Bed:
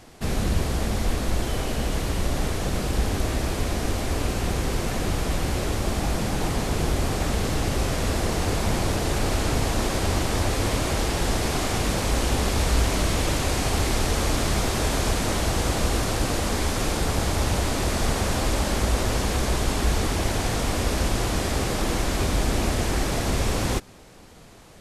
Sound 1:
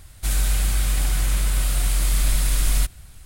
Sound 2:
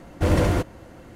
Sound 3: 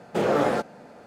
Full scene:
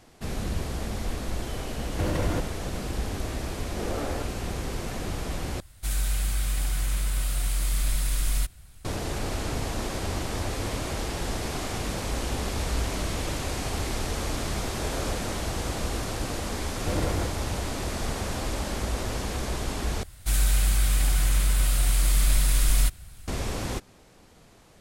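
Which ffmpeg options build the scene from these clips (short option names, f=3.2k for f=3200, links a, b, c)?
-filter_complex "[2:a]asplit=2[a][b];[3:a]asplit=2[c][d];[1:a]asplit=2[e][f];[0:a]volume=-6.5dB[g];[a]acompressor=threshold=-23dB:ratio=6:attack=3.2:release=140:knee=1:detection=peak[h];[d]aeval=exprs='sgn(val(0))*max(abs(val(0))-0.002,0)':c=same[i];[g]asplit=3[j][k][l];[j]atrim=end=5.604[m];[e]atrim=end=3.25,asetpts=PTS-STARTPTS,volume=-6dB[n];[k]atrim=start=8.846:end=20.034[o];[f]atrim=end=3.25,asetpts=PTS-STARTPTS,volume=-1.5dB[p];[l]atrim=start=23.276[q];[h]atrim=end=1.15,asetpts=PTS-STARTPTS,afade=t=in:d=0.004:c=hsin,afade=t=out:st=1.146:d=0.004:c=hsin,adelay=1780[r];[c]atrim=end=1.06,asetpts=PTS-STARTPTS,volume=-12dB,afade=t=in:d=0.004:c=hsin,afade=t=out:st=1.056:d=0.004:c=hsin,adelay=3620[s];[i]atrim=end=1.06,asetpts=PTS-STARTPTS,volume=-16dB,afade=t=in:d=0.004:c=hsin,afade=t=out:st=1.056:d=0.004:c=hsin,adelay=14660[t];[b]atrim=end=1.15,asetpts=PTS-STARTPTS,volume=-9dB,afade=t=in:d=0.004:c=hsin,afade=t=out:st=1.146:d=0.004:c=hsin,adelay=16650[u];[m][n]acrossfade=d=0.004:c1=hsin:c2=hsin[v];[v][o]acrossfade=d=0.004:c1=hsin:c2=hsin[w];[w][p]acrossfade=d=0.004:c1=hsin:c2=hsin[x];[x][q]acrossfade=d=0.004:c1=hsin:c2=hsin[y];[y][r][s][t][u]amix=inputs=5:normalize=0"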